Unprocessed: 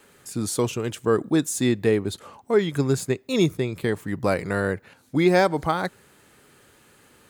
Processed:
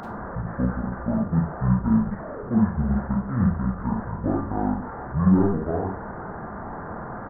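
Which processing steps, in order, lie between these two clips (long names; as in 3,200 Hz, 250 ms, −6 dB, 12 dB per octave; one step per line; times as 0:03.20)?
linear delta modulator 16 kbit/s, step −26.5 dBFS
pitch shifter −11.5 semitones
four-comb reverb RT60 0.31 s, combs from 32 ms, DRR 0.5 dB
level −3 dB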